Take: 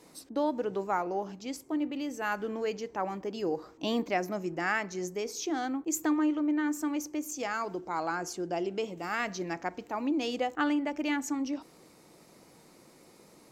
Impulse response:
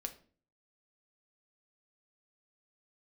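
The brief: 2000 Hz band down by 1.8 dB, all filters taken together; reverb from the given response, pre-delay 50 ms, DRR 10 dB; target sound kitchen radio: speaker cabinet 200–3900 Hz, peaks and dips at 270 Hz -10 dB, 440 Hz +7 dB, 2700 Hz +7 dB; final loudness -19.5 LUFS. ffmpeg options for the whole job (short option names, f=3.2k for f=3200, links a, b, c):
-filter_complex "[0:a]equalizer=f=2k:t=o:g=-4,asplit=2[a][b];[1:a]atrim=start_sample=2205,adelay=50[c];[b][c]afir=irnorm=-1:irlink=0,volume=-8dB[d];[a][d]amix=inputs=2:normalize=0,highpass=200,equalizer=f=270:t=q:w=4:g=-10,equalizer=f=440:t=q:w=4:g=7,equalizer=f=2.7k:t=q:w=4:g=7,lowpass=f=3.9k:w=0.5412,lowpass=f=3.9k:w=1.3066,volume=13.5dB"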